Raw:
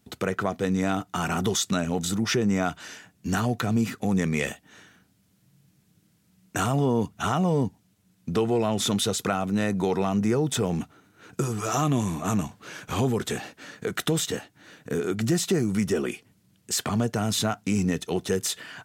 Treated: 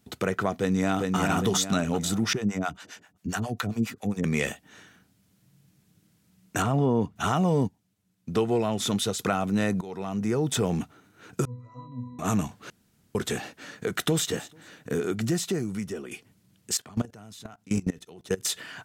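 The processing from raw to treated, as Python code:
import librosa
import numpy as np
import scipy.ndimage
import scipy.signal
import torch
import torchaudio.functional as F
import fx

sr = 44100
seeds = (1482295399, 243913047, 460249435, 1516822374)

y = fx.echo_throw(x, sr, start_s=0.54, length_s=0.63, ms=400, feedback_pct=40, wet_db=-3.0)
y = fx.harmonic_tremolo(y, sr, hz=7.4, depth_pct=100, crossover_hz=530.0, at=(2.33, 4.24))
y = fx.lowpass(y, sr, hz=2000.0, slope=6, at=(6.62, 7.16))
y = fx.upward_expand(y, sr, threshold_db=-38.0, expansion=1.5, at=(7.67, 9.19))
y = fx.octave_resonator(y, sr, note='B', decay_s=0.57, at=(11.45, 12.19))
y = fx.echo_throw(y, sr, start_s=13.86, length_s=0.42, ms=220, feedback_pct=20, wet_db=-17.0)
y = fx.level_steps(y, sr, step_db=23, at=(16.77, 18.45))
y = fx.edit(y, sr, fx.fade_in_from(start_s=9.81, length_s=0.74, floor_db=-18.5),
    fx.room_tone_fill(start_s=12.7, length_s=0.45),
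    fx.fade_out_to(start_s=14.9, length_s=1.21, floor_db=-13.0), tone=tone)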